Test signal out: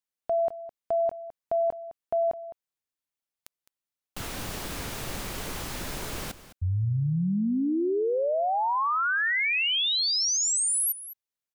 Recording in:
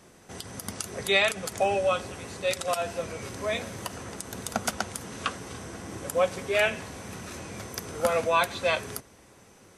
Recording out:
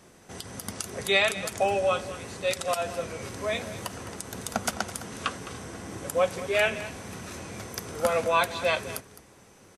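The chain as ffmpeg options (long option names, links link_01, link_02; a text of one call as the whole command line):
ffmpeg -i in.wav -af "aecho=1:1:210:0.178" out.wav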